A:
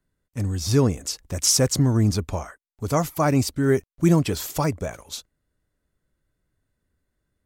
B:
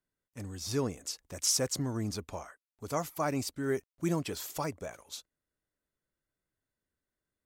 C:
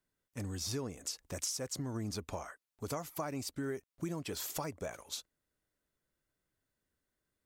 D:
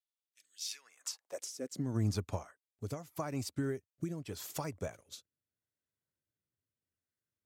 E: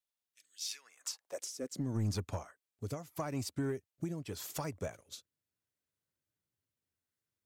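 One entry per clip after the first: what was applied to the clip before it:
low shelf 180 Hz -11.5 dB; gain -9 dB
compressor 10:1, threshold -38 dBFS, peak gain reduction 14 dB; gain +3 dB
high-pass sweep 3300 Hz -> 95 Hz, 0.59–2.08; rotary speaker horn 0.8 Hz; upward expander 1.5:1, over -57 dBFS; gain +3.5 dB
soft clip -27 dBFS, distortion -16 dB; gain +1 dB

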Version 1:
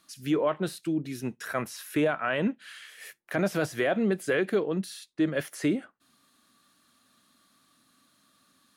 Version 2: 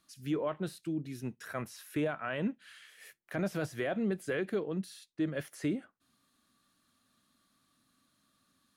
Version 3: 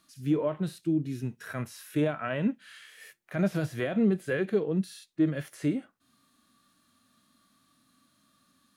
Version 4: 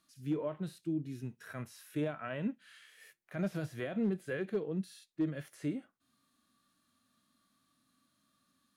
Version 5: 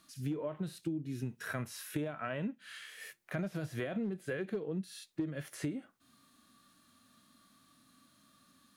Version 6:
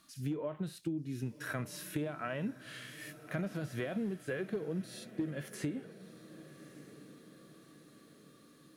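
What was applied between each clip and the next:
low shelf 130 Hz +11 dB; gain -8.5 dB
harmonic-percussive split percussive -12 dB; gain +8.5 dB
hard clip -17.5 dBFS, distortion -32 dB; gain -8 dB
compressor 10:1, threshold -43 dBFS, peak gain reduction 15 dB; gain +9.5 dB
diffused feedback echo 1.201 s, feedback 51%, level -15 dB

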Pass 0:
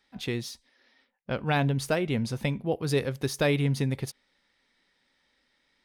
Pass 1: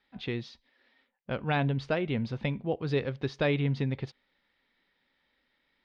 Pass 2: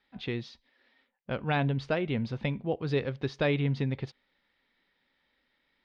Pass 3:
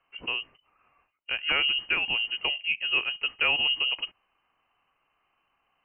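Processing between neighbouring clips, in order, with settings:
LPF 4000 Hz 24 dB/oct; gain -2.5 dB
nothing audible
inverted band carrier 3000 Hz; gain +2 dB

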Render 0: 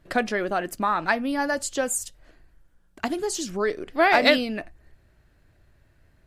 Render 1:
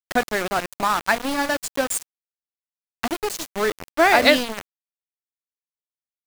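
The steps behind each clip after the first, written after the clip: sample gate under -25 dBFS; gain +3 dB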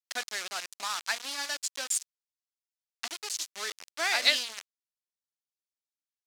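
band-pass 5500 Hz, Q 1.1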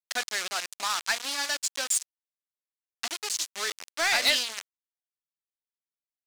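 sample leveller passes 3; gain -6.5 dB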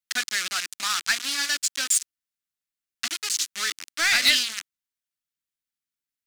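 band shelf 620 Hz -12 dB; gain +4.5 dB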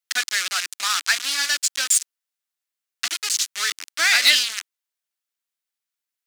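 HPF 440 Hz 12 dB/oct; gain +3.5 dB

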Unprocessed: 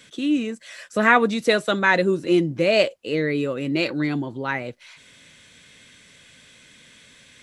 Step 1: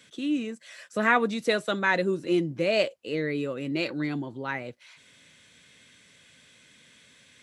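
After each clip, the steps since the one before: HPF 72 Hz; gain -6 dB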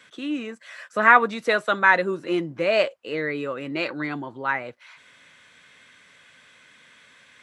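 bell 1200 Hz +14 dB 2.3 oct; gain -4 dB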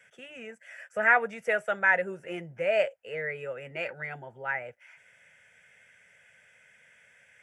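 fixed phaser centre 1100 Hz, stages 6; gain -4 dB

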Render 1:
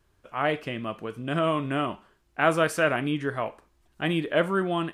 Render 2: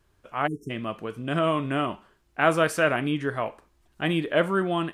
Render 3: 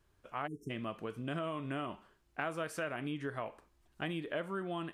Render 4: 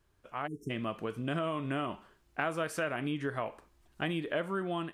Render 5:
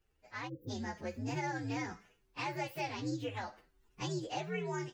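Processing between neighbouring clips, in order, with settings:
spectral delete 0.47–0.7, 440–5300 Hz; gain +1 dB
compressor 5:1, threshold -29 dBFS, peak gain reduction 13 dB; gain -6 dB
AGC gain up to 4.5 dB
inharmonic rescaling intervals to 129%; gain -1.5 dB

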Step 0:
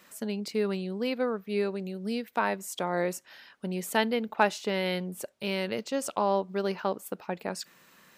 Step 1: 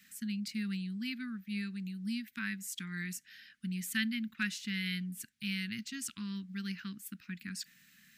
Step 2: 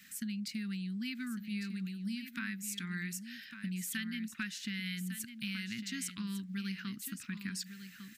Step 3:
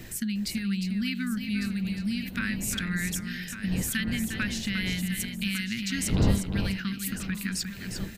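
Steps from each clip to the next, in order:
elliptic band-stop 230–1700 Hz, stop band 70 dB; gain -2.5 dB
compressor 5:1, threshold -41 dBFS, peak gain reduction 12.5 dB; echo 1.152 s -10 dB; gain +4.5 dB
wind noise 190 Hz -44 dBFS; echo 0.355 s -7.5 dB; gain +8.5 dB

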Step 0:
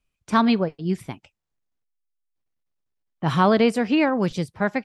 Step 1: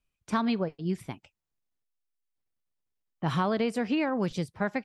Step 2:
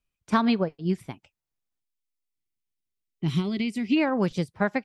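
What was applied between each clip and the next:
compressor, threshold -19 dBFS, peak gain reduction 6.5 dB; gain -4.5 dB
spectral gain 1.8–3.97, 410–1900 Hz -17 dB; upward expander 1.5:1, over -39 dBFS; gain +6 dB

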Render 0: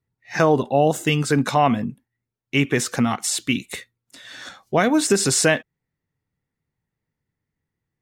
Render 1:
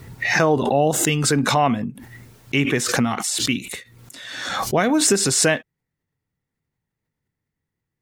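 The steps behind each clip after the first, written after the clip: backwards sustainer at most 39 dB/s; gain -1 dB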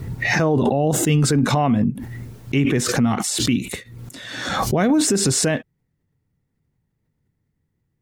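low shelf 500 Hz +11.5 dB; limiter -10 dBFS, peak gain reduction 11 dB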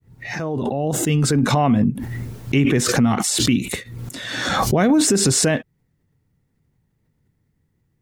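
opening faded in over 1.70 s; in parallel at -2.5 dB: compressor, threshold -27 dBFS, peak gain reduction 12.5 dB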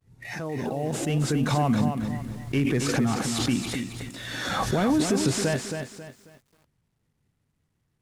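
CVSD 64 kbps; lo-fi delay 0.271 s, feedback 35%, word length 8-bit, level -6.5 dB; gain -7 dB

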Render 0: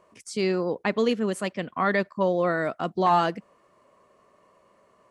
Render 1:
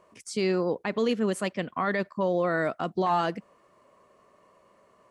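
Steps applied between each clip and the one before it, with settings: limiter -16.5 dBFS, peak gain reduction 6 dB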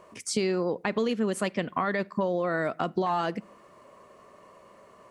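compressor, threshold -31 dBFS, peak gain reduction 10 dB; on a send at -21.5 dB: reverb RT60 0.55 s, pre-delay 5 ms; on the sum: gain +7 dB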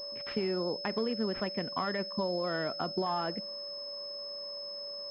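whine 570 Hz -39 dBFS; pulse-width modulation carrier 5200 Hz; gain -5.5 dB

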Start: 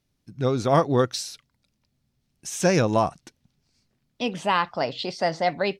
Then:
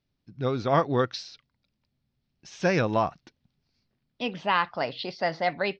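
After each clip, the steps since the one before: steep low-pass 5200 Hz 36 dB/oct; dynamic EQ 1800 Hz, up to +5 dB, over -36 dBFS, Q 0.82; gain -4.5 dB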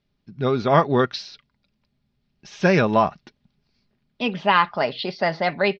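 LPF 5000 Hz 12 dB/oct; comb 4.9 ms, depth 37%; gain +6 dB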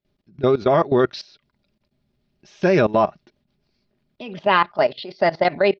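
small resonant body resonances 360/600 Hz, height 8 dB, ringing for 30 ms; level quantiser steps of 18 dB; gain +3 dB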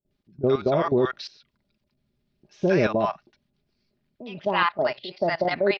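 bands offset in time lows, highs 60 ms, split 800 Hz; gain -3.5 dB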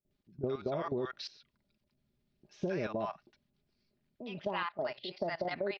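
compressor 6:1, threshold -27 dBFS, peak gain reduction 10.5 dB; gain -5 dB

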